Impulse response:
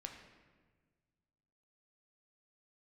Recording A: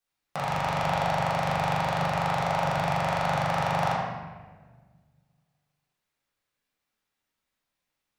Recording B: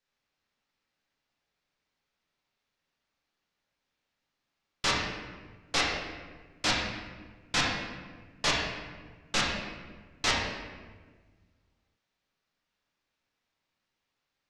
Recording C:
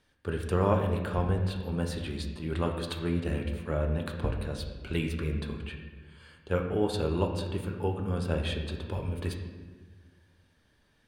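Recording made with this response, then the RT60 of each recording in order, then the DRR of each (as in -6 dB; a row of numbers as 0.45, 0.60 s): C; 1.5, 1.5, 1.5 s; -9.0, -5.0, 2.5 dB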